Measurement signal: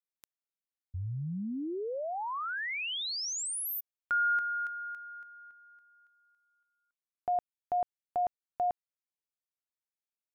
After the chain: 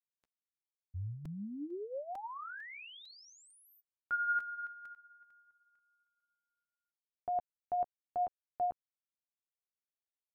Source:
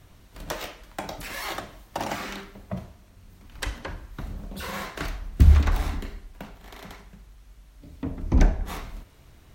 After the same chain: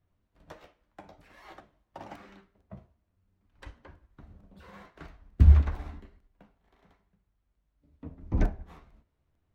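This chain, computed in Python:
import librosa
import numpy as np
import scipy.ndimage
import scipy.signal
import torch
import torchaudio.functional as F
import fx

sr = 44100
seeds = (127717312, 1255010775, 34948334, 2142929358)

y = fx.lowpass(x, sr, hz=1500.0, slope=6)
y = fx.chorus_voices(y, sr, voices=2, hz=0.89, base_ms=12, depth_ms=2.2, mix_pct=25)
y = fx.buffer_crackle(y, sr, first_s=0.35, period_s=0.45, block=128, kind='repeat')
y = fx.upward_expand(y, sr, threshold_db=-51.0, expansion=1.5)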